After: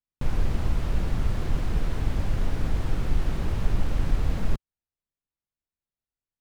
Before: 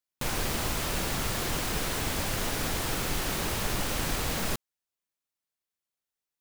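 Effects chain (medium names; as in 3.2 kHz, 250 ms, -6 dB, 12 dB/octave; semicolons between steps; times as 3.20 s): RIAA curve playback; trim -6 dB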